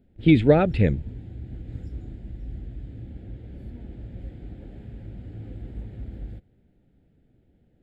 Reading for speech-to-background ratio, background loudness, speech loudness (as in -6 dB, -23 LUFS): 20.0 dB, -39.5 LUFS, -19.5 LUFS